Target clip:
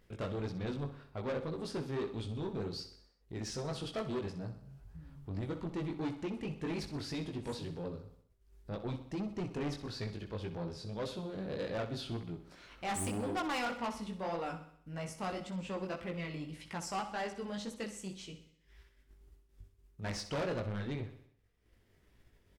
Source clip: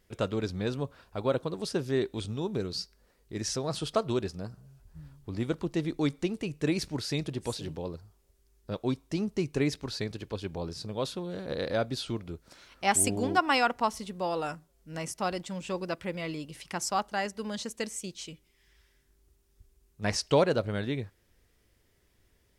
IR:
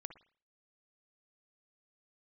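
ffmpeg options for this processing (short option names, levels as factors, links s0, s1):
-filter_complex "[0:a]flanger=delay=17:depth=4:speed=1.8,agate=range=0.0224:threshold=0.00141:ratio=3:detection=peak,acompressor=mode=upward:threshold=0.00501:ratio=2.5,bass=f=250:g=4,treble=f=4000:g=-8,asoftclip=type=tanh:threshold=0.0266,aecho=1:1:63|126|189|252|315|378:0.266|0.141|0.0747|0.0396|0.021|0.0111,asplit=2[s0][s1];[1:a]atrim=start_sample=2205,lowshelf=f=170:g=-8.5[s2];[s1][s2]afir=irnorm=-1:irlink=0,volume=1.26[s3];[s0][s3]amix=inputs=2:normalize=0,volume=0.562"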